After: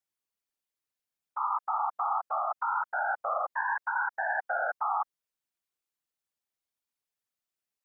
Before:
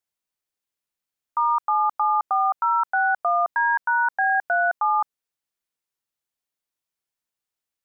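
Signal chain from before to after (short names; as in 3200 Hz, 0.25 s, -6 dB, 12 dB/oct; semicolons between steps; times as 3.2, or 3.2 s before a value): limiter -19.5 dBFS, peak gain reduction 5.5 dB; whisperiser; gain -4 dB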